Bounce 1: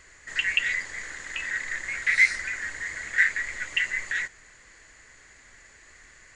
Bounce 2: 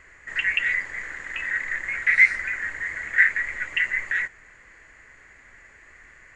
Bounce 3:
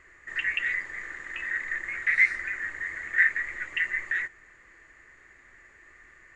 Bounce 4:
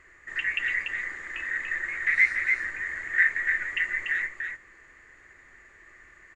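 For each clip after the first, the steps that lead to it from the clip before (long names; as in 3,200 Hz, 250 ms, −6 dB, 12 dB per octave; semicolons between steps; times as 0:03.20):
high shelf with overshoot 3,000 Hz −9.5 dB, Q 1.5; level +1.5 dB
hollow resonant body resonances 350/1,200/1,800/3,700 Hz, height 8 dB; level −6 dB
single-tap delay 290 ms −5 dB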